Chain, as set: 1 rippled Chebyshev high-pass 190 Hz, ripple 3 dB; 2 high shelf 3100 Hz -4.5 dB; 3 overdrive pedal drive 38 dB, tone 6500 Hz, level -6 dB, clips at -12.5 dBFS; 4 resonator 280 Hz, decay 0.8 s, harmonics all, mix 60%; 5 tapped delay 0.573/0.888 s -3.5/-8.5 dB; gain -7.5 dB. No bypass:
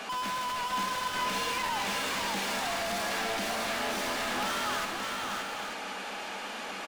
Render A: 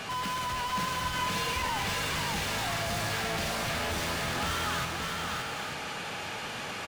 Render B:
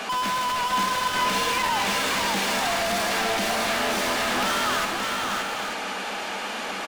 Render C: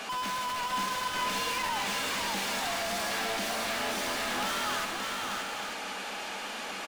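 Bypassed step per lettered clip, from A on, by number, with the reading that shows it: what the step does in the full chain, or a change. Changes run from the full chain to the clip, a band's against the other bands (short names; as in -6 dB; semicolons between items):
1, 125 Hz band +11.0 dB; 4, loudness change +7.5 LU; 2, 8 kHz band +2.0 dB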